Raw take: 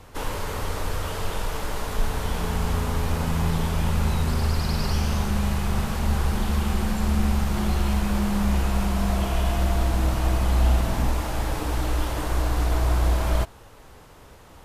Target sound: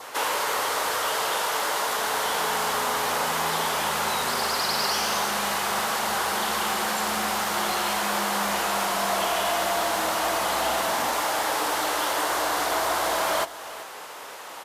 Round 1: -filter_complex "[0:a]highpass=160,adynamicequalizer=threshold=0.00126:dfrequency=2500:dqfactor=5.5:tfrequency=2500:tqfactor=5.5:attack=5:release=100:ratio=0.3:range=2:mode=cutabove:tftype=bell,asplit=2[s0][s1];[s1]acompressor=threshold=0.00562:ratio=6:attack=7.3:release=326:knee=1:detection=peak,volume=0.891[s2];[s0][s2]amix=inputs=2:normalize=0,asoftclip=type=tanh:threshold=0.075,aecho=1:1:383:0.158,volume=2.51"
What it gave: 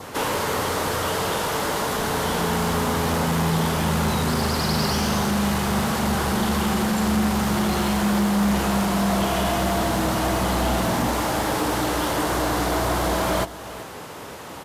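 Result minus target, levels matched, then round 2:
125 Hz band +17.5 dB
-filter_complex "[0:a]highpass=640,adynamicequalizer=threshold=0.00126:dfrequency=2500:dqfactor=5.5:tfrequency=2500:tqfactor=5.5:attack=5:release=100:ratio=0.3:range=2:mode=cutabove:tftype=bell,asplit=2[s0][s1];[s1]acompressor=threshold=0.00562:ratio=6:attack=7.3:release=326:knee=1:detection=peak,volume=0.891[s2];[s0][s2]amix=inputs=2:normalize=0,asoftclip=type=tanh:threshold=0.075,aecho=1:1:383:0.158,volume=2.51"

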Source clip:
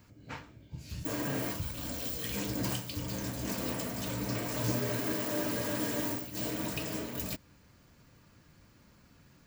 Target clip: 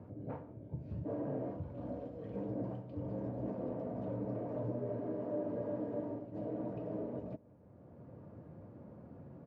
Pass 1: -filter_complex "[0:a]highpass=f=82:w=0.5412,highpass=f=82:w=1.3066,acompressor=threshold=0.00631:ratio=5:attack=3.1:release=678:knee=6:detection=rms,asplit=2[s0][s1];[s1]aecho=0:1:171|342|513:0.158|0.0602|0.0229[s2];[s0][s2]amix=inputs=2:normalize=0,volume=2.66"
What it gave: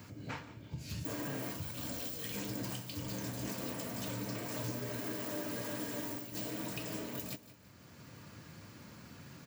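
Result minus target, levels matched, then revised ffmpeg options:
500 Hz band -6.0 dB; echo-to-direct +7.5 dB
-filter_complex "[0:a]highpass=f=82:w=0.5412,highpass=f=82:w=1.3066,acompressor=threshold=0.00631:ratio=5:attack=3.1:release=678:knee=6:detection=rms,lowpass=f=600:t=q:w=1.9,asplit=2[s0][s1];[s1]aecho=0:1:171|342:0.0668|0.0254[s2];[s0][s2]amix=inputs=2:normalize=0,volume=2.66"

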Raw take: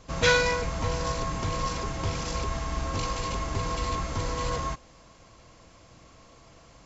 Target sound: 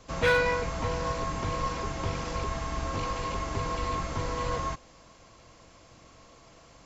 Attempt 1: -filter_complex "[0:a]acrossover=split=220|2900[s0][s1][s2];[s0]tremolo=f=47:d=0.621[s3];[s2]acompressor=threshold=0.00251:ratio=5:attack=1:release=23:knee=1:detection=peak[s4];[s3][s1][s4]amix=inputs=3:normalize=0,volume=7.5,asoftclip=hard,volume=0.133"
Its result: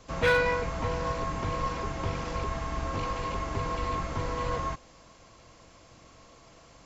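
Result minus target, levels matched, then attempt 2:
compression: peak gain reduction +5 dB
-filter_complex "[0:a]acrossover=split=220|2900[s0][s1][s2];[s0]tremolo=f=47:d=0.621[s3];[s2]acompressor=threshold=0.00501:ratio=5:attack=1:release=23:knee=1:detection=peak[s4];[s3][s1][s4]amix=inputs=3:normalize=0,volume=7.5,asoftclip=hard,volume=0.133"

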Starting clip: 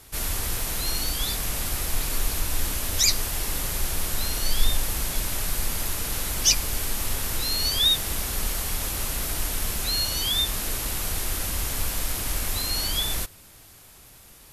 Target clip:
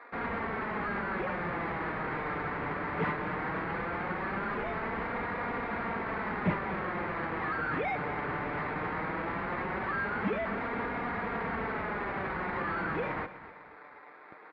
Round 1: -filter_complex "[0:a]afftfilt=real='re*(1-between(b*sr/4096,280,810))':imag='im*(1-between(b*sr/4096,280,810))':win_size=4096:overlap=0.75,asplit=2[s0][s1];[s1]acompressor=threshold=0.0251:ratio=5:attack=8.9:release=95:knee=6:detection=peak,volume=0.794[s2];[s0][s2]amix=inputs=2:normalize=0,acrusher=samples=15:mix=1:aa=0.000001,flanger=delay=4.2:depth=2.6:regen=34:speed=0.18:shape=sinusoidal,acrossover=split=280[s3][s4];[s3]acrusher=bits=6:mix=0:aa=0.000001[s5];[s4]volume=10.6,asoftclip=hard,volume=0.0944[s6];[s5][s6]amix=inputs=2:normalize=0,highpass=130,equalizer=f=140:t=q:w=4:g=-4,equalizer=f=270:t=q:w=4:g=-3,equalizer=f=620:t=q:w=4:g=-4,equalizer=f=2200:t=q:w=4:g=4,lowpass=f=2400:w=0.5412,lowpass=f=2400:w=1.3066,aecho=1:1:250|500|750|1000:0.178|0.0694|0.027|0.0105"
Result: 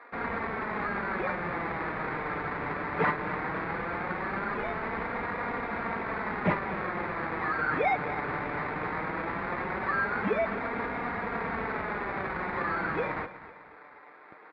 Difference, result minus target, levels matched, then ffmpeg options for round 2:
overload inside the chain: distortion -10 dB
-filter_complex "[0:a]afftfilt=real='re*(1-between(b*sr/4096,280,810))':imag='im*(1-between(b*sr/4096,280,810))':win_size=4096:overlap=0.75,asplit=2[s0][s1];[s1]acompressor=threshold=0.0251:ratio=5:attack=8.9:release=95:knee=6:detection=peak,volume=0.794[s2];[s0][s2]amix=inputs=2:normalize=0,acrusher=samples=15:mix=1:aa=0.000001,flanger=delay=4.2:depth=2.6:regen=34:speed=0.18:shape=sinusoidal,acrossover=split=280[s3][s4];[s3]acrusher=bits=6:mix=0:aa=0.000001[s5];[s4]volume=31.6,asoftclip=hard,volume=0.0316[s6];[s5][s6]amix=inputs=2:normalize=0,highpass=130,equalizer=f=140:t=q:w=4:g=-4,equalizer=f=270:t=q:w=4:g=-3,equalizer=f=620:t=q:w=4:g=-4,equalizer=f=2200:t=q:w=4:g=4,lowpass=f=2400:w=0.5412,lowpass=f=2400:w=1.3066,aecho=1:1:250|500|750|1000:0.178|0.0694|0.027|0.0105"

